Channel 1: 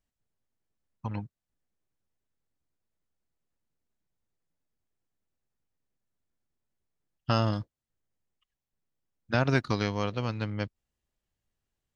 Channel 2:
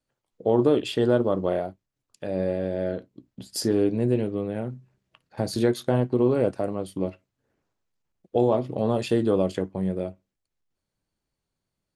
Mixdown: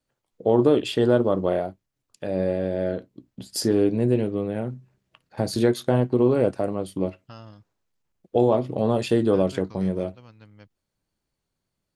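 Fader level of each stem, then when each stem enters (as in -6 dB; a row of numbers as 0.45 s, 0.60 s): -17.5 dB, +2.0 dB; 0.00 s, 0.00 s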